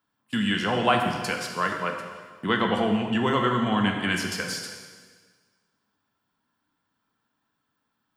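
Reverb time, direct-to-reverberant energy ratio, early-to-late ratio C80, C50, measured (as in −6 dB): 1.6 s, 2.0 dB, 6.0 dB, 4.5 dB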